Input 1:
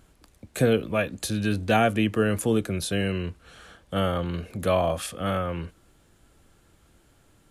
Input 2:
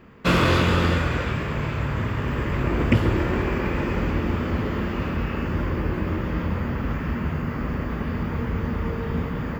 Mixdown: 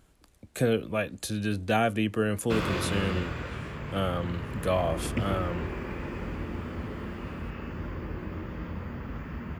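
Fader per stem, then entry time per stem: -4.0 dB, -11.0 dB; 0.00 s, 2.25 s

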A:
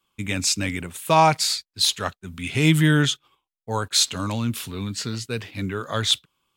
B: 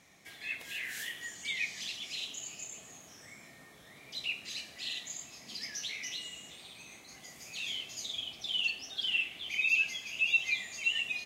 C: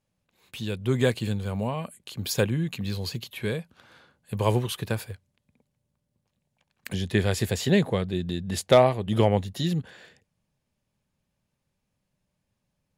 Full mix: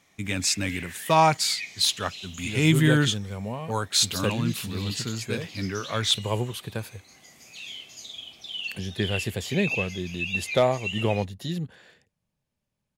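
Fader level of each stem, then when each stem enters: -2.5 dB, -1.5 dB, -4.0 dB; 0.00 s, 0.00 s, 1.85 s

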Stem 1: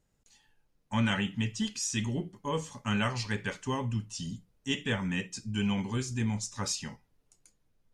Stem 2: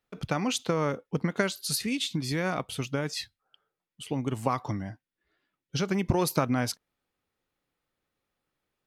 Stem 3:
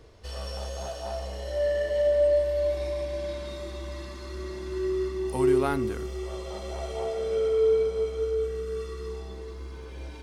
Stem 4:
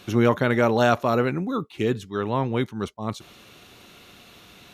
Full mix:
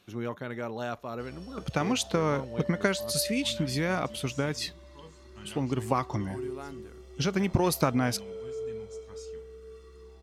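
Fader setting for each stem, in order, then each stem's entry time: -18.5 dB, +0.5 dB, -14.5 dB, -15.5 dB; 2.50 s, 1.45 s, 0.95 s, 0.00 s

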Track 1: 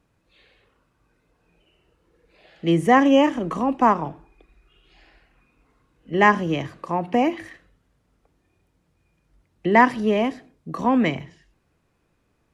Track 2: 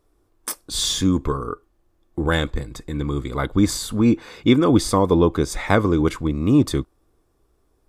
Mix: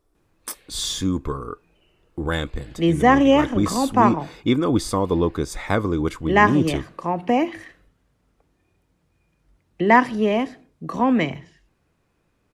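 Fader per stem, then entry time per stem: +0.5 dB, -4.0 dB; 0.15 s, 0.00 s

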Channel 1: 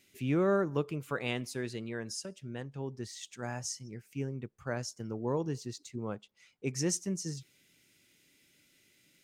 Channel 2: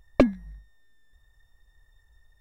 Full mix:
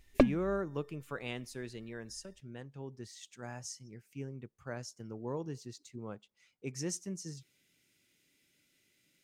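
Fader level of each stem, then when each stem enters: -6.0 dB, -6.0 dB; 0.00 s, 0.00 s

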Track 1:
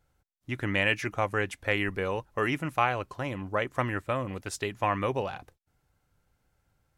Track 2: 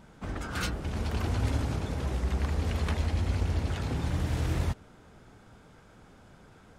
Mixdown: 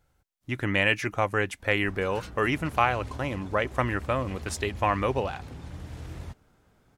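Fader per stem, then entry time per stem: +2.5 dB, -10.5 dB; 0.00 s, 1.60 s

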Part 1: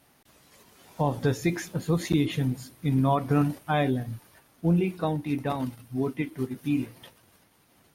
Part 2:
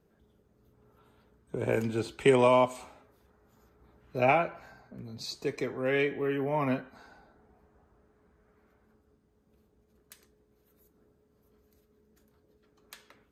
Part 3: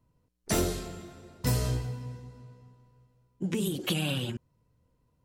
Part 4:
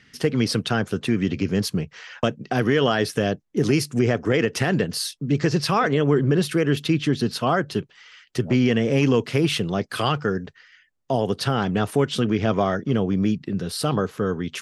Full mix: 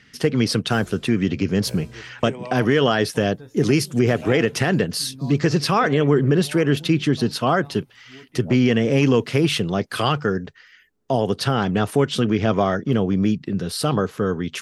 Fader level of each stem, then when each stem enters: -17.5 dB, -12.5 dB, -15.5 dB, +2.0 dB; 2.15 s, 0.00 s, 0.20 s, 0.00 s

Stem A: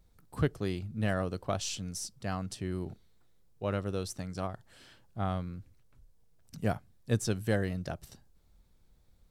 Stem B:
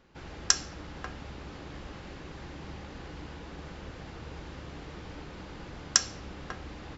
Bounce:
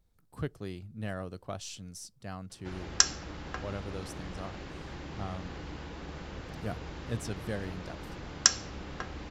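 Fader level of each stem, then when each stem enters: -6.5 dB, +1.0 dB; 0.00 s, 2.50 s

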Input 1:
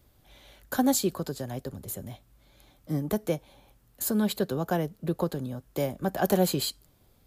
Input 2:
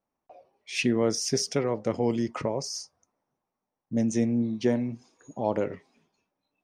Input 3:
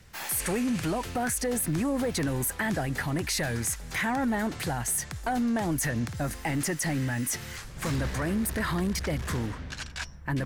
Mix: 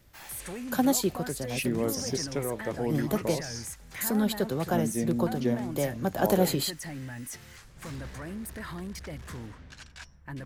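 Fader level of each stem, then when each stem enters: -0.5 dB, -5.0 dB, -10.0 dB; 0.00 s, 0.80 s, 0.00 s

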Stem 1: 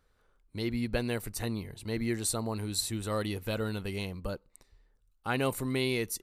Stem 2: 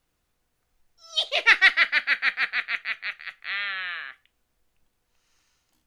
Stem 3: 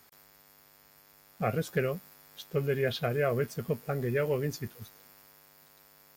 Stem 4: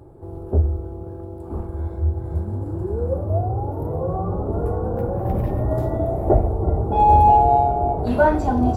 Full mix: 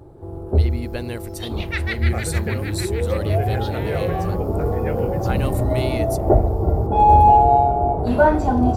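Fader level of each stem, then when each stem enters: +1.0 dB, -11.0 dB, -1.0 dB, +1.5 dB; 0.00 s, 0.25 s, 0.70 s, 0.00 s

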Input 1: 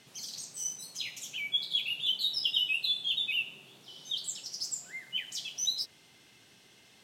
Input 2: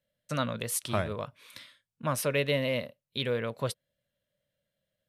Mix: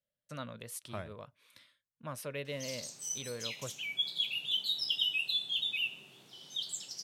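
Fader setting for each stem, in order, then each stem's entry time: -2.5 dB, -12.0 dB; 2.45 s, 0.00 s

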